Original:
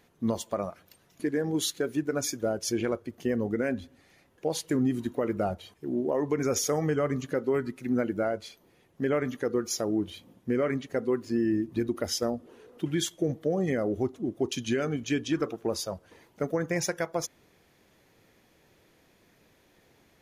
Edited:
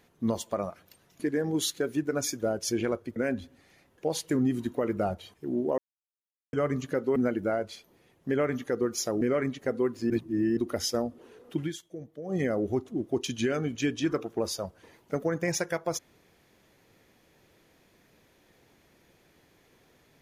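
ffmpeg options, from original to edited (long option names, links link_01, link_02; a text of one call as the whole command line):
ffmpeg -i in.wav -filter_complex "[0:a]asplit=10[link_01][link_02][link_03][link_04][link_05][link_06][link_07][link_08][link_09][link_10];[link_01]atrim=end=3.162[link_11];[link_02]atrim=start=3.558:end=6.18,asetpts=PTS-STARTPTS,afade=type=out:start_time=2.618:duration=0.004:curve=hsin[link_12];[link_03]atrim=start=6.18:end=6.93,asetpts=PTS-STARTPTS,volume=0[link_13];[link_04]atrim=start=6.93:end=7.562,asetpts=PTS-STARTPTS,afade=type=in:duration=0.004:curve=hsin[link_14];[link_05]atrim=start=7.888:end=9.942[link_15];[link_06]atrim=start=10.488:end=11.382[link_16];[link_07]atrim=start=11.378:end=11.852,asetpts=PTS-STARTPTS,areverse[link_17];[link_08]atrim=start=11.848:end=13.06,asetpts=PTS-STARTPTS,afade=type=out:start_time=1.062:duration=0.15:curve=qua:silence=0.223872[link_18];[link_09]atrim=start=13.06:end=13.49,asetpts=PTS-STARTPTS,volume=-13dB[link_19];[link_10]atrim=start=13.49,asetpts=PTS-STARTPTS,afade=type=in:duration=0.15:curve=qua:silence=0.223872[link_20];[link_12][link_13][link_14]concat=n=3:v=0:a=1[link_21];[link_11][link_21]acrossfade=duration=0.004:curve1=hsin:curve2=hsin[link_22];[link_22][link_15]acrossfade=duration=0.004:curve1=hsin:curve2=hsin[link_23];[link_23][link_16]acrossfade=duration=0.004:curve1=hsin:curve2=hsin[link_24];[link_24][link_17]acrossfade=duration=0.004:curve1=hsin:curve2=hsin[link_25];[link_18][link_19][link_20]concat=n=3:v=0:a=1[link_26];[link_25][link_26]acrossfade=duration=0.004:curve1=hsin:curve2=hsin" out.wav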